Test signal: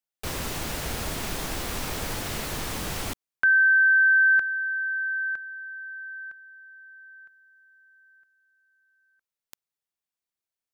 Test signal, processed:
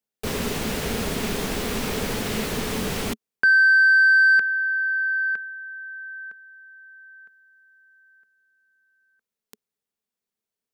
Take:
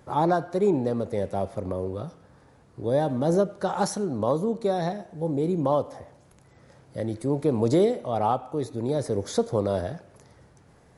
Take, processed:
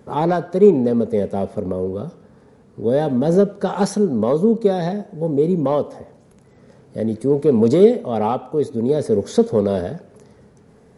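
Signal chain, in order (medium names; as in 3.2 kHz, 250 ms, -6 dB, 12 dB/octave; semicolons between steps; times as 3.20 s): dynamic bell 2.6 kHz, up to +6 dB, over -39 dBFS, Q 0.77; saturation -11.5 dBFS; small resonant body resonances 220/420 Hz, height 12 dB, ringing for 40 ms; trim +1 dB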